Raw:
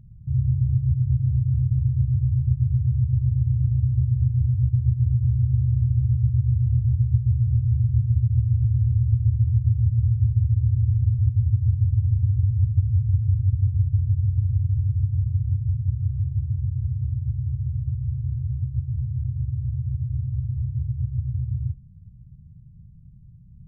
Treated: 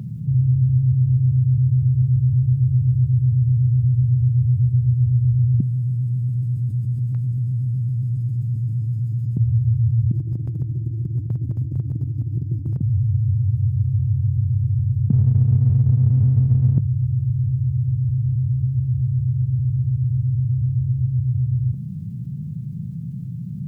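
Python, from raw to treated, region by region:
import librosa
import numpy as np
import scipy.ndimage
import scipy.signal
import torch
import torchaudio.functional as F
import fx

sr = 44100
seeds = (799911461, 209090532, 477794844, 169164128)

y = fx.chain(x, sr, fx.highpass(hz=170.0, slope=24),
    fx.env_flatten(amount_pct=50), at=(5.6, 9.37))
y = fx.chain(y, sr, fx.highpass(hz=58.0, slope=12),
    fx.peak_eq(hz=95.0, db=-6.5, octaves=1.9),
    fx.over_compress(threshold_db=-31.0, ratio=-0.5), at=(10.11, 12.81))
y = fx.chain(y, sr, fx.highpass(hz=65.0, slope=24),
    fx.small_body(hz=(220.0,), ring_ms=20, db=18),
    fx.running_max(window=9), at=(15.1, 16.78))
y = scipy.signal.sosfilt(scipy.signal.butter(4, 140.0, 'highpass', fs=sr, output='sos'), y)
y = fx.env_flatten(y, sr, amount_pct=50)
y = y * librosa.db_to_amplitude(8.0)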